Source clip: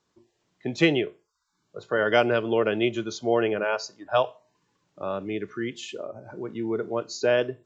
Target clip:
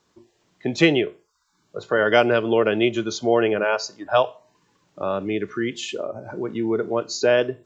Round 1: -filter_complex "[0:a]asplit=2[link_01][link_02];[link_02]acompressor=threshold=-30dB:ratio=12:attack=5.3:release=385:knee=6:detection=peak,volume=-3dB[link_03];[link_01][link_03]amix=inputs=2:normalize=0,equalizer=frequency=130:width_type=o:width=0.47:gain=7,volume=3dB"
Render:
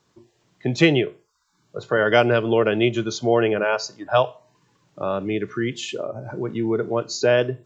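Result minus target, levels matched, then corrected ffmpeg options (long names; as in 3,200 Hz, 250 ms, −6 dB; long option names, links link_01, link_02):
125 Hz band +5.5 dB
-filter_complex "[0:a]asplit=2[link_01][link_02];[link_02]acompressor=threshold=-30dB:ratio=12:attack=5.3:release=385:knee=6:detection=peak,volume=-3dB[link_03];[link_01][link_03]amix=inputs=2:normalize=0,equalizer=frequency=130:width_type=o:width=0.47:gain=-2,volume=3dB"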